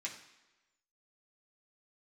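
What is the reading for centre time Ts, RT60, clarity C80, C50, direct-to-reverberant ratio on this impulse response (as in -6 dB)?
22 ms, 1.1 s, 11.0 dB, 8.5 dB, -4.0 dB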